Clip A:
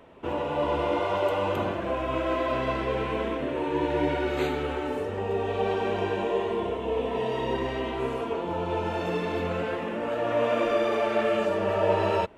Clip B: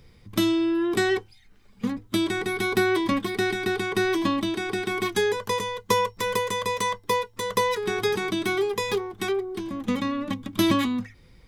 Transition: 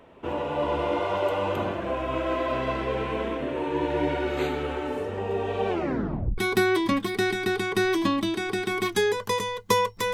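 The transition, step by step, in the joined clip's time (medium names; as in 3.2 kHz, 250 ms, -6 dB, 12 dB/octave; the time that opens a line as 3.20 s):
clip A
5.68 s: tape stop 0.70 s
6.38 s: go over to clip B from 2.58 s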